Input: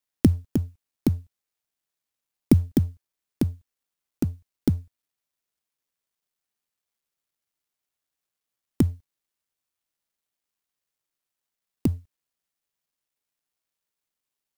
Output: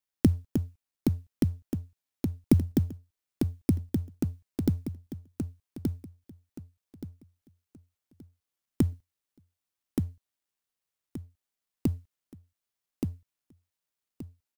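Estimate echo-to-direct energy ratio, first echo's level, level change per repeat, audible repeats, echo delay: -3.5 dB, -4.0 dB, -11.0 dB, 3, 1175 ms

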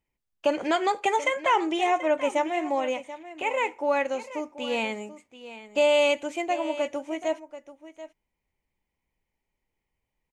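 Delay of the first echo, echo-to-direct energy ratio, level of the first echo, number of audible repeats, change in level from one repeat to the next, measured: 734 ms, -14.5 dB, -14.5 dB, 1, no regular repeats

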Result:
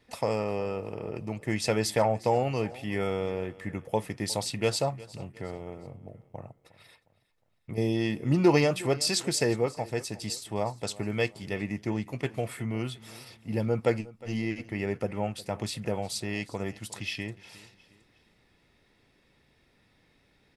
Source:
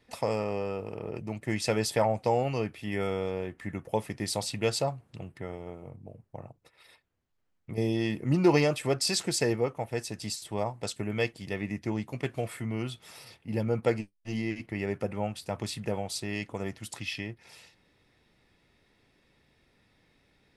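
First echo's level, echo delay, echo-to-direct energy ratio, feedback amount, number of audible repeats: -20.0 dB, 359 ms, -19.5 dB, 40%, 2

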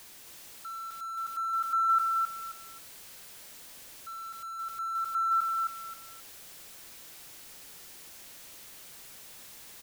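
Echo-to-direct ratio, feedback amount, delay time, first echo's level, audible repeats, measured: -3.5 dB, 25%, 266 ms, -4.0 dB, 3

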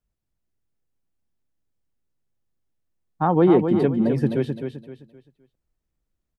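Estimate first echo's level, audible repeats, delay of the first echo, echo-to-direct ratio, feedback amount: -7.0 dB, 3, 259 ms, -6.5 dB, 32%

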